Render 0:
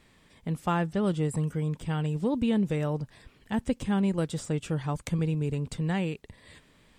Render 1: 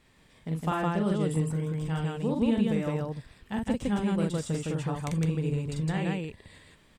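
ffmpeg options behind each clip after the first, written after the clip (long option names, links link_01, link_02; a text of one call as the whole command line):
ffmpeg -i in.wav -af "aecho=1:1:43.73|160.3:0.708|0.891,volume=-3.5dB" out.wav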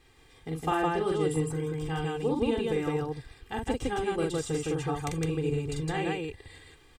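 ffmpeg -i in.wav -af "aecho=1:1:2.5:0.87" out.wav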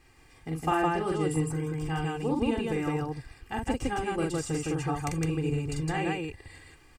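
ffmpeg -i in.wav -af "superequalizer=7b=0.562:13b=0.398,volume=1.5dB" out.wav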